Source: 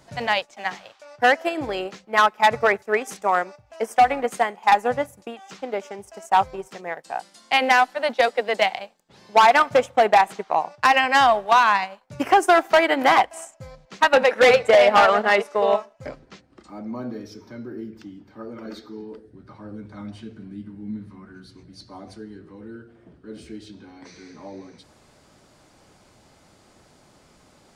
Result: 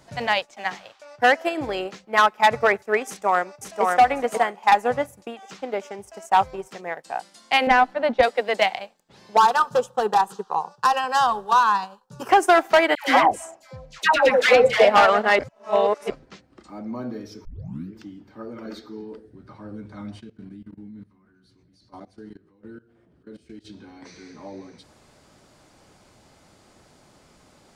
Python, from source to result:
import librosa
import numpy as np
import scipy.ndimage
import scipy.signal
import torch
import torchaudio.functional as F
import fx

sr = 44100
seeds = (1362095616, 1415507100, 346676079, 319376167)

y = fx.echo_throw(x, sr, start_s=3.07, length_s=0.76, ms=540, feedback_pct=20, wet_db=-2.0)
y = fx.riaa(y, sr, side='playback', at=(7.67, 8.23))
y = fx.fixed_phaser(y, sr, hz=430.0, stages=8, at=(9.37, 12.29))
y = fx.dispersion(y, sr, late='lows', ms=133.0, hz=930.0, at=(12.95, 14.85))
y = fx.level_steps(y, sr, step_db=20, at=(20.19, 23.64), fade=0.02)
y = fx.edit(y, sr, fx.reverse_span(start_s=15.39, length_s=0.71),
    fx.tape_start(start_s=17.45, length_s=0.49), tone=tone)